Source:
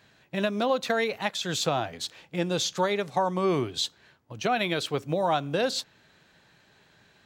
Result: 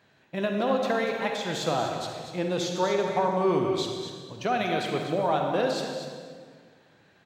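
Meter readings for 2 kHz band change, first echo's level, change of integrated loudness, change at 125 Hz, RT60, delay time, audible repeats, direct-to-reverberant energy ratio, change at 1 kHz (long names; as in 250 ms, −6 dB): −1.5 dB, −9.0 dB, +0.5 dB, −0.5 dB, 1.7 s, 240 ms, 1, 1.5 dB, +1.0 dB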